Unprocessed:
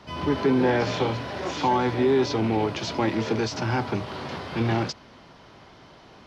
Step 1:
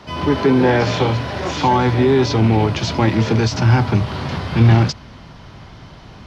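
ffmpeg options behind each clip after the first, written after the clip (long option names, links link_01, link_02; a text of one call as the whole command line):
ffmpeg -i in.wav -af "asubboost=boost=4:cutoff=180,volume=7.5dB" out.wav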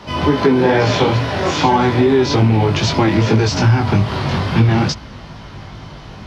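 ffmpeg -i in.wav -af "flanger=delay=18.5:depth=2.8:speed=2.4,acompressor=threshold=-17dB:ratio=6,volume=8dB" out.wav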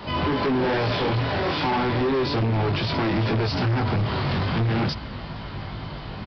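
ffmpeg -i in.wav -af "aresample=11025,asoftclip=type=hard:threshold=-16.5dB,aresample=44100,alimiter=limit=-19.5dB:level=0:latency=1:release=38" out.wav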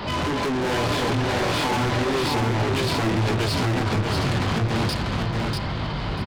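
ffmpeg -i in.wav -filter_complex "[0:a]asoftclip=type=tanh:threshold=-30.5dB,asplit=2[link_01][link_02];[link_02]aecho=0:1:642|1284|1926:0.668|0.147|0.0323[link_03];[link_01][link_03]amix=inputs=2:normalize=0,volume=7.5dB" out.wav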